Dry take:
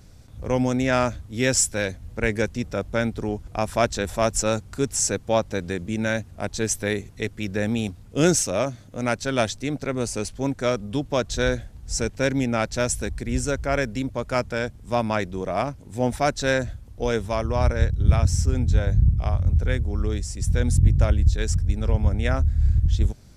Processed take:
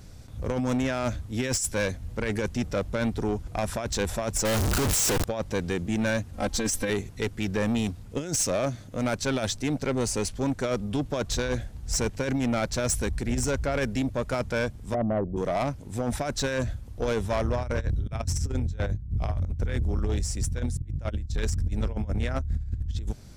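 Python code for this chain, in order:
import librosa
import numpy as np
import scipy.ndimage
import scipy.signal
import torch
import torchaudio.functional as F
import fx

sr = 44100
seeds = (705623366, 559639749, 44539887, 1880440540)

y = fx.clip_1bit(x, sr, at=(4.45, 5.24))
y = fx.comb(y, sr, ms=3.8, depth=0.96, at=(6.33, 6.9))
y = fx.steep_lowpass(y, sr, hz=750.0, slope=96, at=(14.93, 15.36), fade=0.02)
y = fx.over_compress(y, sr, threshold_db=-23.0, ratio=-0.5)
y = 10.0 ** (-20.0 / 20.0) * np.tanh(y / 10.0 ** (-20.0 / 20.0))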